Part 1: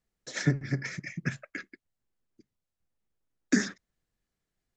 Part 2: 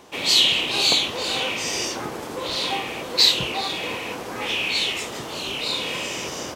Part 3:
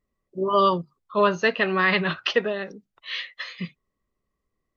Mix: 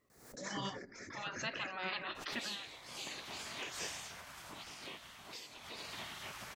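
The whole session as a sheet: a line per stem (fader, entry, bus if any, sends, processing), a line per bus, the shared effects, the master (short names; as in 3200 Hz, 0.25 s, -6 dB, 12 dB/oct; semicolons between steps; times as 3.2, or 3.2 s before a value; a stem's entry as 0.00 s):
-5.5 dB, 0.10 s, bus A, no send, echo send -10.5 dB, bell 3000 Hz -13.5 dB 0.72 oct
2.82 s -15 dB -> 3.13 s -6 dB -> 3.96 s -6 dB -> 4.75 s -17 dB -> 5.74 s -17 dB -> 5.96 s -4 dB, 2.15 s, bus A, no send, no echo send, vocal rider within 4 dB 0.5 s
-12.0 dB, 0.00 s, no bus, no send, no echo send, gate with hold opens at -47 dBFS
bus A: 0.0 dB, compressor 3:1, threshold -42 dBFS, peak gain reduction 15 dB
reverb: off
echo: echo 0.182 s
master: spectral gate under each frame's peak -10 dB weak; backwards sustainer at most 77 dB/s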